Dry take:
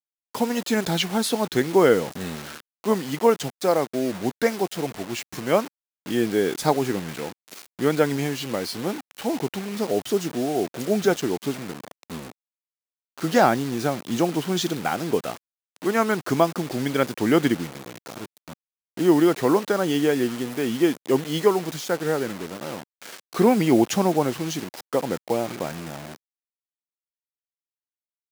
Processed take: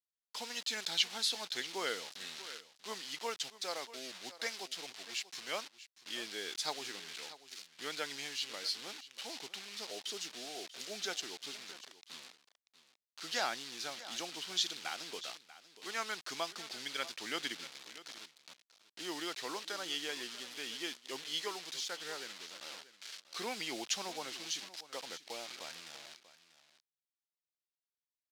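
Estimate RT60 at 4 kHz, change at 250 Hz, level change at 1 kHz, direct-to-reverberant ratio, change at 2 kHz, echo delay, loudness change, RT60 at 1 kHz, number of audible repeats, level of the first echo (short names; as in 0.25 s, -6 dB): none, -28.5 dB, -17.5 dB, none, -11.0 dB, 0.639 s, -16.0 dB, none, 1, -16.0 dB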